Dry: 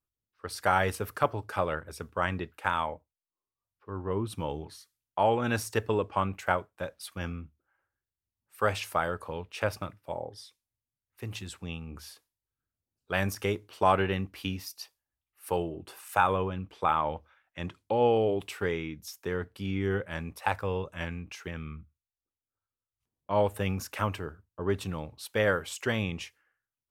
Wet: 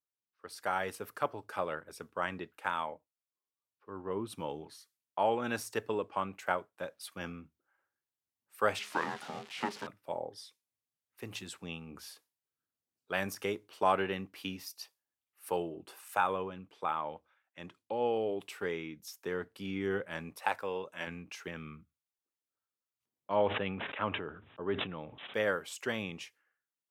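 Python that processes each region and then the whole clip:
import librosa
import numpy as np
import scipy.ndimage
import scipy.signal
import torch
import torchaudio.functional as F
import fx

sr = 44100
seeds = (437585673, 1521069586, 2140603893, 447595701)

y = fx.chain(x, sr, fx.crossing_spikes(level_db=-22.5),
    fx.lowpass(hz=3300.0, slope=12),
    fx.ring_mod(carrier_hz=310.0), at=(8.79, 9.87))
y = fx.chain(y, sr, fx.highpass(hz=300.0, slope=6),
    fx.notch(hz=1200.0, q=19.0), at=(20.47, 21.07))
y = fx.chain(y, sr, fx.resample_bad(factor=6, down='none', up='filtered'),
    fx.sustainer(db_per_s=47.0), at=(23.35, 25.34))
y = scipy.signal.sosfilt(scipy.signal.butter(2, 190.0, 'highpass', fs=sr, output='sos'), y)
y = fx.rider(y, sr, range_db=4, speed_s=2.0)
y = F.gain(torch.from_numpy(y), -5.5).numpy()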